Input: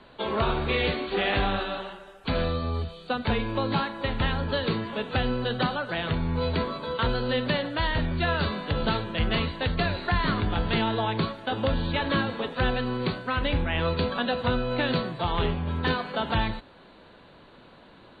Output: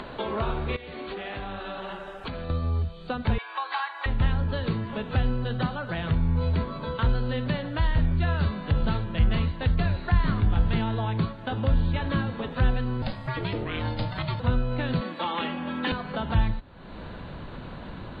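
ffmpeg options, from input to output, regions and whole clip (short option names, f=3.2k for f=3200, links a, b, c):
-filter_complex "[0:a]asettb=1/sr,asplit=3[a][b][c];[a]atrim=end=0.764[d];[b]atrim=start=0.76:end=2.5,asetpts=PTS-STARTPTS,afade=t=in:d=0.004:c=qsin,afade=t=out:st=1.736:d=0.004:c=qsin,lowshelf=f=110:g=-10.5,acompressor=threshold=-36dB:ratio=12:attack=3.2:release=140:knee=1:detection=peak[e];[c]atrim=start=2.496[f];[d][e]acrossfade=d=0.004:c1=hsin:c2=qsin[g];[g][f]acrossfade=d=0.004:c1=qsin:c2=hsin,asettb=1/sr,asplit=3[h][i][j];[h]atrim=end=3.384[k];[i]atrim=start=3.38:end=4.06,asetpts=PTS-STARTPTS,afade=t=in:d=0.004:c=qsin,afade=t=out:st=0.676:d=0.004:c=qsin,highpass=f=770:w=0.5412,highpass=f=770:w=1.3066,equalizer=f=1.5k:t=o:w=1.3:g=5.5,aecho=1:1:2.6:0.67,atrim=end_sample=29988[l];[j]atrim=start=4.056[m];[k][l]acrossfade=d=0.004:c1=hsin:c2=qsin[n];[n][m]acrossfade=d=0.004:c1=qsin:c2=hsin,asettb=1/sr,asplit=3[o][p][q];[o]atrim=end=13.024[r];[p]atrim=start=13.02:end=14.4,asetpts=PTS-STARTPTS,afade=t=in:d=0.004:c=qsin,afade=t=out:st=1.376:d=0.004:c=qsin,aemphasis=mode=production:type=75fm,aeval=exprs='val(0)*sin(2*PI*390*n/s)':c=same[s];[q]atrim=start=14.396[t];[r][s]acrossfade=d=0.004:c1=hsin:c2=qsin[u];[u][t]acrossfade=d=0.004:c1=qsin:c2=hsin,asettb=1/sr,asplit=3[v][w][x];[v]atrim=end=15.014[y];[w]atrim=start=15.01:end=15.92,asetpts=PTS-STARTPTS,afade=t=in:d=0.004:c=qsin,afade=t=out:st=0.906:d=0.004:c=qsin,highpass=f=210:w=0.5412,highpass=f=210:w=1.3066,equalizer=f=2.5k:w=0.58:g=5.5,aecho=1:1:3.6:0.7,atrim=end_sample=40131[z];[x]atrim=start=15.916[aa];[y][z]acrossfade=d=0.004:c1=hsin:c2=qsin[ab];[ab][aa]acrossfade=d=0.004:c1=qsin:c2=hsin,lowpass=f=2.3k:p=1,asubboost=boost=3:cutoff=190,acompressor=mode=upward:threshold=-21dB:ratio=2.5,volume=-3.5dB"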